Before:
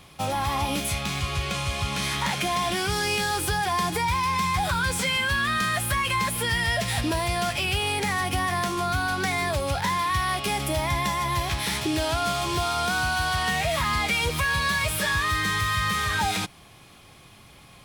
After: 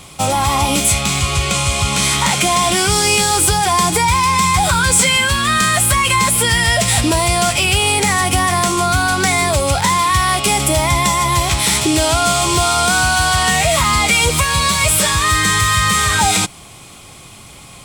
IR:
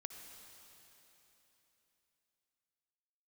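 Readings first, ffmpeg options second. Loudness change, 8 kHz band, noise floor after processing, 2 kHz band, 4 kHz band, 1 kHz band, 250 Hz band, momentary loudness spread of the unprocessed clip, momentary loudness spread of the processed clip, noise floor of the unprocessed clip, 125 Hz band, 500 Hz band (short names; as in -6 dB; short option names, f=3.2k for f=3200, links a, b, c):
+11.5 dB, +18.0 dB, -38 dBFS, +9.0 dB, +11.5 dB, +10.5 dB, +10.5 dB, 3 LU, 3 LU, -50 dBFS, +10.5 dB, +10.5 dB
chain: -af "equalizer=f=7.9k:t=o:w=0.6:g=11.5,bandreject=f=1.7k:w=9.2,acontrast=84,volume=3.5dB"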